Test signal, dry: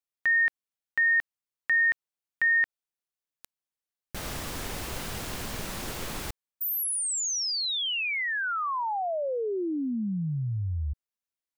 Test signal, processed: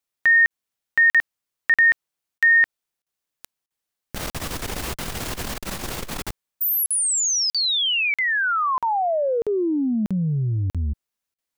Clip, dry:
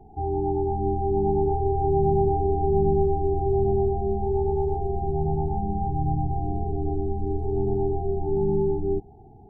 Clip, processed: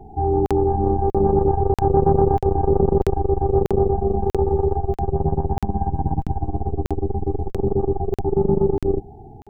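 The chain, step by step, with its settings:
regular buffer underruns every 0.64 s, samples 2,048, zero, from 0:00.46
saturating transformer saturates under 180 Hz
level +8 dB

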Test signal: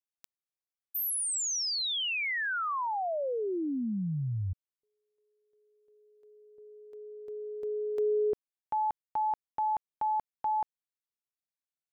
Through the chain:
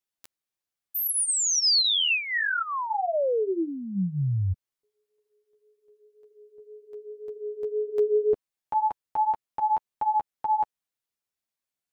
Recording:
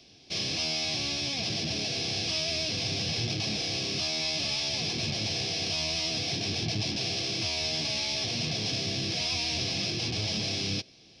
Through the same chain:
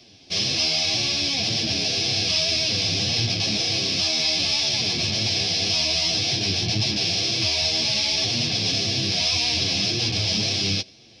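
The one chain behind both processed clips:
dynamic equaliser 4,400 Hz, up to +4 dB, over −40 dBFS, Q 0.87
flanger 1.9 Hz, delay 8 ms, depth 3.7 ms, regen −1%
level +8 dB

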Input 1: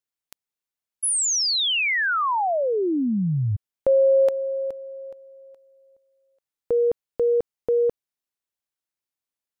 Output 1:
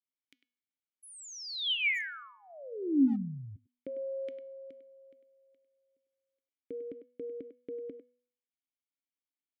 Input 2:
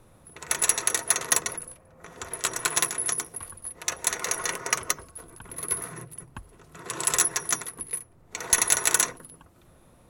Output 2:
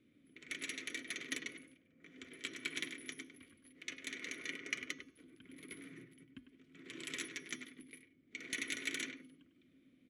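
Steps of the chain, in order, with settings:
formant filter i
hum removal 245.5 Hz, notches 27
far-end echo of a speakerphone 100 ms, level −9 dB
level +2 dB

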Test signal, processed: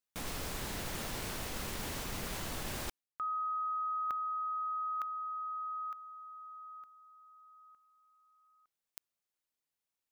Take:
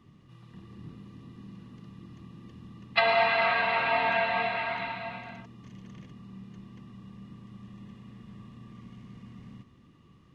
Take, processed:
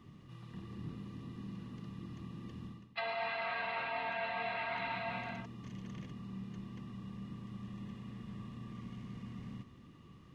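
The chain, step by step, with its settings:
reversed playback
downward compressor 10 to 1, threshold −36 dBFS
reversed playback
level +1 dB

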